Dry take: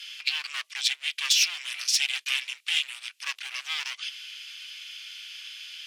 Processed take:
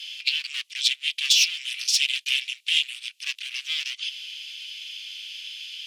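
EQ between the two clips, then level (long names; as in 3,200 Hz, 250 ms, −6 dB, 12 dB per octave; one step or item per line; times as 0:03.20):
high-pass with resonance 2,900 Hz, resonance Q 1.7
0.0 dB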